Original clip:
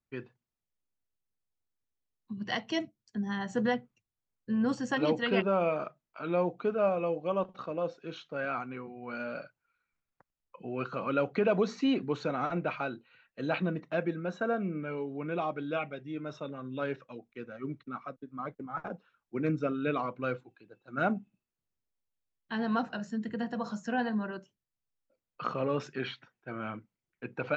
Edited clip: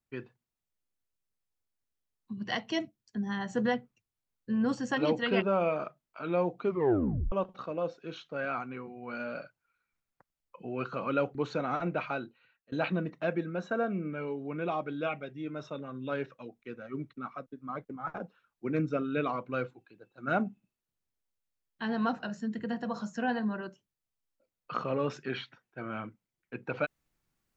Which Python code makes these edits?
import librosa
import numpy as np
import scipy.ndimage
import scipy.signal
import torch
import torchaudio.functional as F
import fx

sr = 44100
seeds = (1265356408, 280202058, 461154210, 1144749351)

y = fx.edit(x, sr, fx.tape_stop(start_s=6.64, length_s=0.68),
    fx.cut(start_s=11.35, length_s=0.7),
    fx.fade_out_to(start_s=12.9, length_s=0.52, floor_db=-23.5), tone=tone)